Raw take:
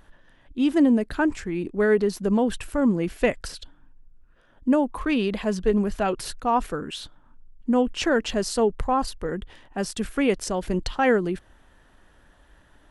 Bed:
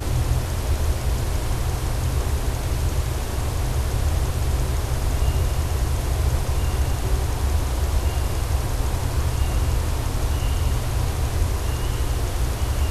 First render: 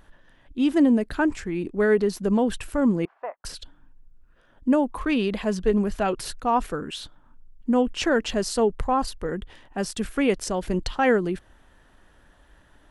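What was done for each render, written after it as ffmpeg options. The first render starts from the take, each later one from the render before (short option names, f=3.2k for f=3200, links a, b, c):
-filter_complex "[0:a]asettb=1/sr,asplit=3[a][b][c];[a]atrim=end=3.054[d];[b]atrim=start=3.05:end=3.45,asetpts=PTS-STARTPTS,afade=t=in:d=0.004:c=qsin,afade=t=out:st=0.396:d=0.004:c=qsin,asuperpass=centerf=930:order=4:qfactor=1.8[e];[c]atrim=start=3.446[f];[d][e]acrossfade=d=0.004:c1=hsin:c2=qsin[g];[g][f]acrossfade=d=0.004:c1=qsin:c2=hsin"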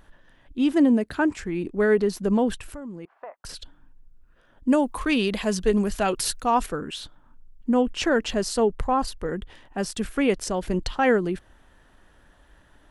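-filter_complex "[0:a]asettb=1/sr,asplit=3[a][b][c];[a]atrim=end=0.724[d];[b]atrim=start=0.72:end=1.39,asetpts=PTS-STARTPTS,afade=t=in:d=0.004:c=qsin,afade=t=out:st=0.666:d=0.004:c=qsin,highpass=68[e];[c]atrim=start=1.386[f];[d][e]acrossfade=d=0.004:c1=hsin:c2=qsin[g];[g][f]acrossfade=d=0.004:c1=qsin:c2=hsin,asettb=1/sr,asplit=3[h][i][j];[h]atrim=end=2.544[k];[i]atrim=start=2.54:end=3.49,asetpts=PTS-STARTPTS,afade=t=in:d=0.004:c=qsin,afade=t=out:st=0.946:d=0.004:c=qsin,acompressor=threshold=-34dB:ratio=8:attack=3.2:release=140:knee=1:detection=peak[l];[j]atrim=start=3.486[m];[k][l]acrossfade=d=0.004:c1=hsin:c2=qsin[n];[n][m]acrossfade=d=0.004:c1=qsin:c2=hsin,asettb=1/sr,asplit=3[o][p][q];[o]atrim=end=4.684[r];[p]atrim=start=4.68:end=6.66,asetpts=PTS-STARTPTS,afade=t=in:d=0.004:c=qsin,afade=t=out:st=1.976:d=0.004:c=qsin,highshelf=f=3.3k:g=10.5[s];[q]atrim=start=6.656[t];[r][s]acrossfade=d=0.004:c1=hsin:c2=qsin[u];[u][t]acrossfade=d=0.004:c1=qsin:c2=hsin"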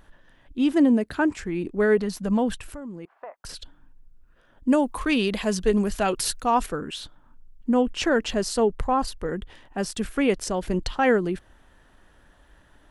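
-filter_complex "[0:a]asettb=1/sr,asplit=3[a][b][c];[a]atrim=end=1.974[d];[b]atrim=start=1.97:end=2.6,asetpts=PTS-STARTPTS,afade=t=in:d=0.004:c=qsin,afade=t=out:st=0.626:d=0.004:c=qsin,equalizer=f=380:w=4.7:g=-13[e];[c]atrim=start=2.596[f];[d][e]acrossfade=d=0.004:c1=hsin:c2=qsin[g];[g][f]acrossfade=d=0.004:c1=qsin:c2=hsin"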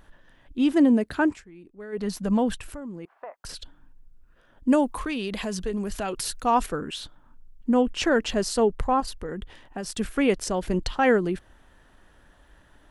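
-filter_complex "[0:a]asettb=1/sr,asplit=3[a][b][c];[a]atrim=end=4.894[d];[b]atrim=start=4.89:end=6.36,asetpts=PTS-STARTPTS,afade=t=in:d=0.004:c=qsin,afade=t=out:st=1.466:d=0.004:c=qsin,acompressor=threshold=-27dB:ratio=3:attack=3.2:release=140:knee=1:detection=peak[e];[c]atrim=start=6.356[f];[d][e]acrossfade=d=0.004:c1=hsin:c2=qsin[g];[g][f]acrossfade=d=0.004:c1=qsin:c2=hsin,asettb=1/sr,asplit=3[h][i][j];[h]atrim=end=9.004[k];[i]atrim=start=9:end=9.99,asetpts=PTS-STARTPTS,afade=t=in:d=0.004:c=qsin,afade=t=out:st=0.986:d=0.004:c=qsin,acompressor=threshold=-28dB:ratio=6:attack=3.2:release=140:knee=1:detection=peak[l];[j]atrim=start=9.986[m];[k][l]acrossfade=d=0.004:c1=hsin:c2=qsin[n];[n][m]acrossfade=d=0.004:c1=qsin:c2=hsin,asplit=3[o][p][q];[o]atrim=end=1.43,asetpts=PTS-STARTPTS,afade=t=out:st=1.28:d=0.15:silence=0.112202[r];[p]atrim=start=1.43:end=1.92,asetpts=PTS-STARTPTS,volume=-19dB[s];[q]atrim=start=1.92,asetpts=PTS-STARTPTS,afade=t=in:d=0.15:silence=0.112202[t];[r][s][t]concat=n=3:v=0:a=1"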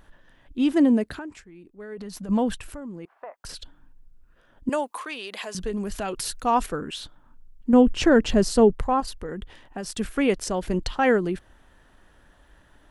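-filter_complex "[0:a]asettb=1/sr,asplit=3[a][b][c];[a]atrim=end=1.134[d];[b]atrim=start=1.13:end=2.29,asetpts=PTS-STARTPTS,afade=t=in:d=0.004:c=qsin,afade=t=out:st=1.156:d=0.004:c=qsin,acompressor=threshold=-32dB:ratio=16:attack=3.2:release=140:knee=1:detection=peak[e];[c]atrim=start=2.286[f];[d][e]acrossfade=d=0.004:c1=hsin:c2=qsin[g];[g][f]acrossfade=d=0.004:c1=qsin:c2=hsin,asettb=1/sr,asplit=3[h][i][j];[h]atrim=end=4.694[k];[i]atrim=start=4.69:end=5.55,asetpts=PTS-STARTPTS,afade=t=in:d=0.004:c=qsin,afade=t=out:st=0.856:d=0.004:c=qsin,highpass=570[l];[j]atrim=start=5.546[m];[k][l]acrossfade=d=0.004:c1=hsin:c2=qsin[n];[n][m]acrossfade=d=0.004:c1=qsin:c2=hsin,asettb=1/sr,asplit=3[o][p][q];[o]atrim=end=7.734[r];[p]atrim=start=7.73:end=8.73,asetpts=PTS-STARTPTS,afade=t=in:d=0.004:c=qsin,afade=t=out:st=0.996:d=0.004:c=qsin,lowshelf=f=400:g=10[s];[q]atrim=start=8.726[t];[r][s]acrossfade=d=0.004:c1=hsin:c2=qsin[u];[u][t]acrossfade=d=0.004:c1=qsin:c2=hsin"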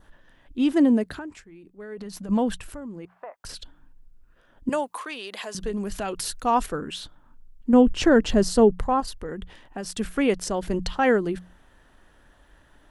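-af "bandreject=f=60:t=h:w=6,bandreject=f=120:t=h:w=6,bandreject=f=180:t=h:w=6,adynamicequalizer=threshold=0.00282:dfrequency=2400:dqfactor=4.1:tfrequency=2400:tqfactor=4.1:attack=5:release=100:ratio=0.375:range=2:mode=cutabove:tftype=bell"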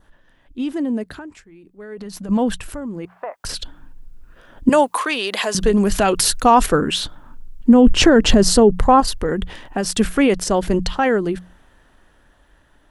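-af "alimiter=limit=-16.5dB:level=0:latency=1:release=76,dynaudnorm=f=470:g=13:m=15dB"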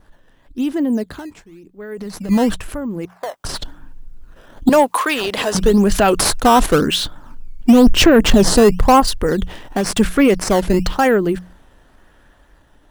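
-filter_complex "[0:a]asplit=2[a][b];[b]acrusher=samples=11:mix=1:aa=0.000001:lfo=1:lforange=17.6:lforate=0.96,volume=-4.5dB[c];[a][c]amix=inputs=2:normalize=0,asoftclip=type=tanh:threshold=-3dB"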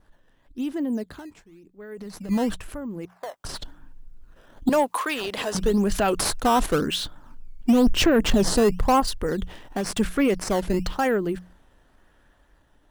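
-af "volume=-8.5dB"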